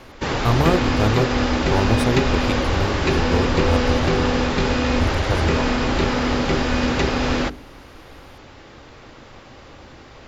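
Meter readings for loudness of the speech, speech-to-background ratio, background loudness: −24.5 LKFS, −4.0 dB, −20.5 LKFS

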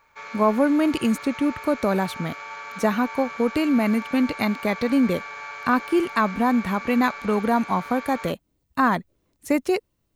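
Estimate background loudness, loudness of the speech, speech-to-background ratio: −35.5 LKFS, −23.0 LKFS, 12.5 dB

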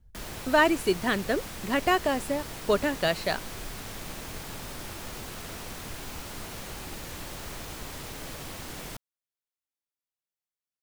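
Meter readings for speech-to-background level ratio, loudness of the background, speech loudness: 12.0 dB, −39.0 LKFS, −27.0 LKFS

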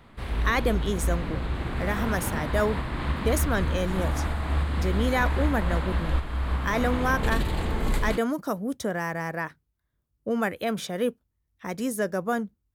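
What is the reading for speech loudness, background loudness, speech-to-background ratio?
−29.0 LKFS, −29.5 LKFS, 0.5 dB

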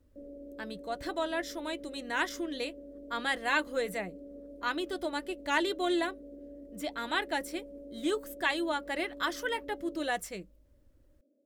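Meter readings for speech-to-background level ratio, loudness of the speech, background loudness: 14.5 dB, −33.5 LKFS, −48.0 LKFS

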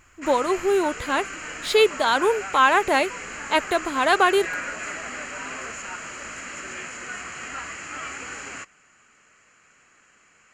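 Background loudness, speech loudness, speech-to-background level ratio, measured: −33.0 LKFS, −21.5 LKFS, 11.5 dB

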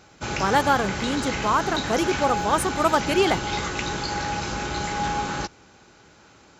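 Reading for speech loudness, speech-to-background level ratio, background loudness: −23.5 LKFS, 4.0 dB, −27.5 LKFS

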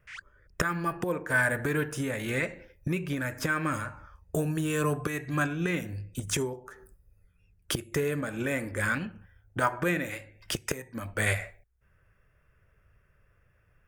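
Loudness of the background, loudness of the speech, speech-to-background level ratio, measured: −46.0 LKFS, −30.5 LKFS, 15.5 dB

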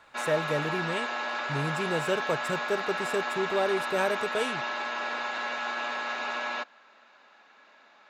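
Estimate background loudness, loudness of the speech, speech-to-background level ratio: −31.5 LKFS, −31.5 LKFS, 0.0 dB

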